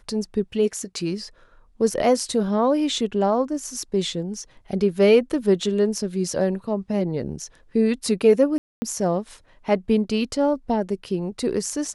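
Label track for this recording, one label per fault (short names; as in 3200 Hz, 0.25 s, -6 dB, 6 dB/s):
8.580000	8.820000	gap 0.24 s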